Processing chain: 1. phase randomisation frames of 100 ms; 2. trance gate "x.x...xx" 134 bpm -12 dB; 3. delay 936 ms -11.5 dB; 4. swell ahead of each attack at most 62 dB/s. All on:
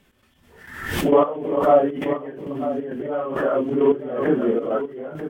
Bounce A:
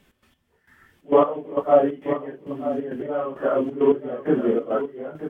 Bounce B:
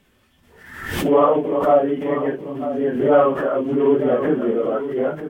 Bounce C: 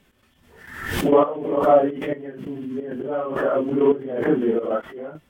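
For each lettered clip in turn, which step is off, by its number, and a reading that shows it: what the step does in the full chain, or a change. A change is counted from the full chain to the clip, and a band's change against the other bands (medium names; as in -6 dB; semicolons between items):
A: 4, 2 kHz band -5.0 dB; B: 2, momentary loudness spread change -2 LU; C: 3, momentary loudness spread change +4 LU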